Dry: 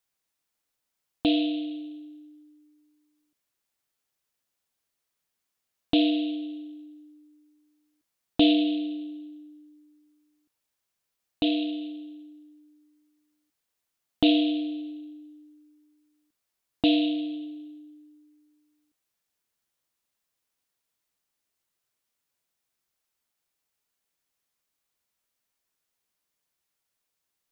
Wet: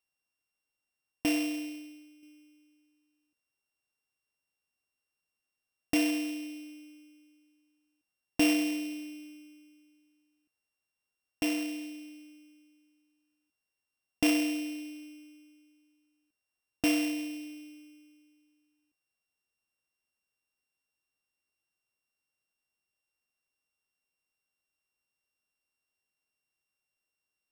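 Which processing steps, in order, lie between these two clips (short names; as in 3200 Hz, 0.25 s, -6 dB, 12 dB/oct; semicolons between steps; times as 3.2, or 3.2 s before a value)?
sample sorter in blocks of 16 samples; 1.63–2.23 upward expander 1.5:1, over -44 dBFS; gain -5.5 dB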